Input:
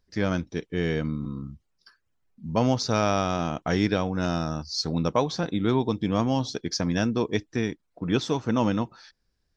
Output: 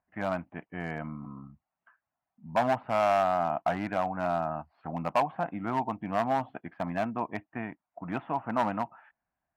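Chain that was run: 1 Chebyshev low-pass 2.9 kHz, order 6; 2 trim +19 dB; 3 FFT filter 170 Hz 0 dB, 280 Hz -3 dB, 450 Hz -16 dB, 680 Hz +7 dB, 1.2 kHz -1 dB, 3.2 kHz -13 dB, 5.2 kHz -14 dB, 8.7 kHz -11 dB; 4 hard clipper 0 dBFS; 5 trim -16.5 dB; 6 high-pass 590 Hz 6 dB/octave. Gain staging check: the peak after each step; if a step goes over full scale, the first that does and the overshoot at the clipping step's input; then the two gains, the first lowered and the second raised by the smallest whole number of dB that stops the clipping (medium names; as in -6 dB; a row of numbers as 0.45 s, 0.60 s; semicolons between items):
-9.0 dBFS, +10.0 dBFS, +8.0 dBFS, 0.0 dBFS, -16.5 dBFS, -14.0 dBFS; step 2, 8.0 dB; step 2 +11 dB, step 5 -8.5 dB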